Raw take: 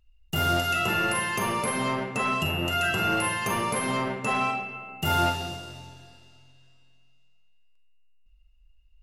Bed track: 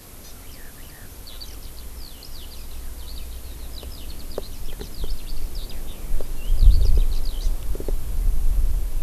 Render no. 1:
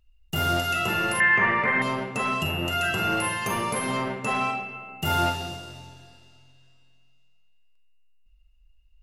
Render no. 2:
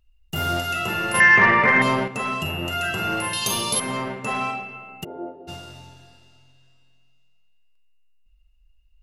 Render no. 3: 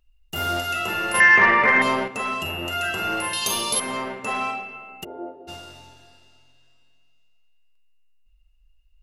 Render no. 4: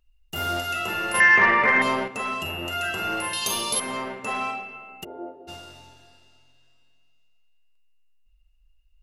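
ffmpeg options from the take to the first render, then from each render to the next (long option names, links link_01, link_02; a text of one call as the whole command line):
ffmpeg -i in.wav -filter_complex "[0:a]asettb=1/sr,asplit=3[link_01][link_02][link_03];[link_01]atrim=end=1.204[link_04];[link_02]atrim=start=1.2:end=1.82,asetpts=PTS-STARTPTS,afade=type=in:duration=0.004:curve=qsin,afade=type=out:start_time=0.616:duration=0.004:curve=qsin,lowpass=frequency=1900:width_type=q:width=8.7[link_05];[link_03]atrim=start=1.816[link_06];[link_04][link_05]acrossfade=duration=0.004:curve1=hsin:curve2=qsin[link_07];[link_07][link_06]acrossfade=duration=0.004:curve1=qsin:curve2=hsin" out.wav
ffmpeg -i in.wav -filter_complex "[0:a]asettb=1/sr,asplit=3[link_01][link_02][link_03];[link_01]atrim=end=1.144[link_04];[link_02]atrim=start=1.14:end=2.08,asetpts=PTS-STARTPTS,afade=type=in:duration=0.004:curve=qsin,afade=type=out:start_time=0.936:duration=0.004:curve=qsin,acontrast=75[link_05];[link_03]atrim=start=2.076[link_06];[link_04][link_05]acrossfade=duration=0.004:curve1=hsin:curve2=qsin[link_07];[link_07][link_06]acrossfade=duration=0.004:curve1=qsin:curve2=hsin,asettb=1/sr,asplit=3[link_08][link_09][link_10];[link_08]atrim=end=3.334[link_11];[link_09]atrim=start=3.33:end=3.8,asetpts=PTS-STARTPTS,afade=type=in:duration=0.004:curve=qsin,afade=type=out:start_time=0.466:duration=0.004:curve=qsin,highshelf=frequency=2700:width_type=q:width=3:gain=10.5[link_12];[link_10]atrim=start=3.796[link_13];[link_11][link_12]acrossfade=duration=0.004:curve1=hsin:curve2=qsin[link_14];[link_14][link_13]acrossfade=duration=0.004:curve1=qsin:curve2=hsin,asplit=3[link_15][link_16][link_17];[link_15]afade=type=out:start_time=5.03:duration=0.02[link_18];[link_16]asuperpass=centerf=410:order=4:qfactor=1.5,afade=type=in:start_time=5.03:duration=0.02,afade=type=out:start_time=5.47:duration=0.02[link_19];[link_17]afade=type=in:start_time=5.47:duration=0.02[link_20];[link_18][link_19][link_20]amix=inputs=3:normalize=0" out.wav
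ffmpeg -i in.wav -af "equalizer=frequency=140:width=1.3:gain=-10.5,bandreject=frequency=60:width_type=h:width=6,bandreject=frequency=120:width_type=h:width=6" out.wav
ffmpeg -i in.wav -af "volume=-2dB" out.wav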